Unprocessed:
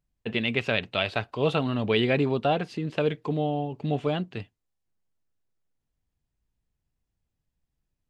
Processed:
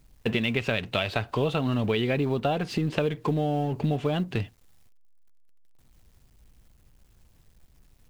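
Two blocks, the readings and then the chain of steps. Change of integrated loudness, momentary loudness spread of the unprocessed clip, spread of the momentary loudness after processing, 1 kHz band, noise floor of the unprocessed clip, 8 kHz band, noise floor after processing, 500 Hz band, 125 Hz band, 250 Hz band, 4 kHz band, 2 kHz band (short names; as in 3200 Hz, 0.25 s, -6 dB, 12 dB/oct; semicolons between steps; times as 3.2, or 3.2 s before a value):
0.0 dB, 7 LU, 3 LU, -1.0 dB, -82 dBFS, n/a, -60 dBFS, -1.0 dB, +2.5 dB, +1.0 dB, -1.5 dB, -1.5 dB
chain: G.711 law mismatch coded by mu; low shelf 120 Hz +6.5 dB; compressor 6:1, threshold -30 dBFS, peak gain reduction 12 dB; gain +7 dB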